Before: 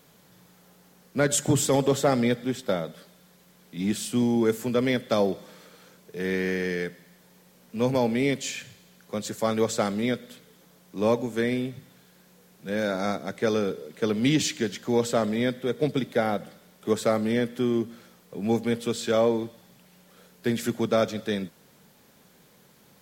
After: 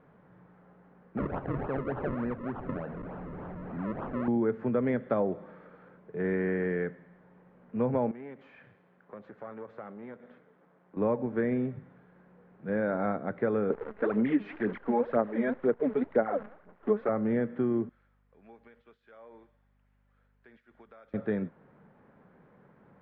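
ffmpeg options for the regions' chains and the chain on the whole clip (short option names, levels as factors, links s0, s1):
-filter_complex "[0:a]asettb=1/sr,asplit=3[s0][s1][s2];[s0]atrim=end=1.174[s3];[s1]atrim=start=1.17:end=4.28,asetpts=PTS-STARTPTS,afade=t=in:d=0.004:c=qsin,afade=t=out:st=3.106:d=0.004:c=qsin,aeval=exprs='val(0)+0.5*0.0168*sgn(val(0))':c=same,acompressor=threshold=0.0141:ratio=2:attack=3.2:release=140:knee=1:detection=peak,acrusher=samples=39:mix=1:aa=0.000001:lfo=1:lforange=39:lforate=3.4[s4];[s2]atrim=start=4.276[s5];[s3][s4]acrossfade=d=0.004:c1=hsin:c2=qsin[s6];[s6][s5]acrossfade=d=0.004:c1=qsin:c2=hsin,asettb=1/sr,asplit=3[s7][s8][s9];[s7]atrim=end=8.114[s10];[s8]atrim=start=8.11:end=10.97,asetpts=PTS-STARTPTS,afade=t=in:d=0.004:c=qsin,afade=t=out:st=2.856:d=0.004:c=qsin,aeval=exprs='if(lt(val(0),0),0.447*val(0),val(0))':c=same,acompressor=threshold=0.01:ratio=3:attack=3.2:release=140:knee=1:detection=peak,highpass=f=290:p=1[s11];[s9]atrim=start=10.966[s12];[s10][s11]acrossfade=d=0.004:c1=hsin:c2=qsin[s13];[s13][s12]acrossfade=d=0.004:c1=qsin:c2=hsin,asettb=1/sr,asplit=3[s14][s15][s16];[s14]atrim=end=13.704[s17];[s15]atrim=start=13.7:end=17.09,asetpts=PTS-STARTPTS,afade=t=in:d=0.004:c=qsin,afade=t=out:st=3.386:d=0.004:c=qsin,highpass=250,lowpass=4200,aphaser=in_gain=1:out_gain=1:delay=4.9:decay=0.72:speed=2:type=sinusoidal,acrusher=bits=7:dc=4:mix=0:aa=0.000001[s18];[s16]atrim=start=17.086[s19];[s17][s18]acrossfade=d=0.004:c1=hsin:c2=qsin[s20];[s20][s19]acrossfade=d=0.004:c1=qsin:c2=hsin,asettb=1/sr,asplit=3[s21][s22][s23];[s21]atrim=end=17.894[s24];[s22]atrim=start=17.89:end=21.14,asetpts=PTS-STARTPTS,afade=t=in:d=0.004:c=qsin,afade=t=out:st=3.246:d=0.004:c=qsin,aderivative,aeval=exprs='val(0)+0.000398*(sin(2*PI*50*n/s)+sin(2*PI*2*50*n/s)/2+sin(2*PI*3*50*n/s)/3+sin(2*PI*4*50*n/s)/4+sin(2*PI*5*50*n/s)/5)':c=same,acompressor=threshold=0.00562:ratio=16:attack=3.2:release=140:knee=1:detection=peak[s25];[s23]atrim=start=21.136[s26];[s24][s25]acrossfade=d=0.004:c1=hsin:c2=qsin[s27];[s27][s26]acrossfade=d=0.004:c1=qsin:c2=hsin,lowpass=f=1700:w=0.5412,lowpass=f=1700:w=1.3066,acompressor=threshold=0.0562:ratio=3"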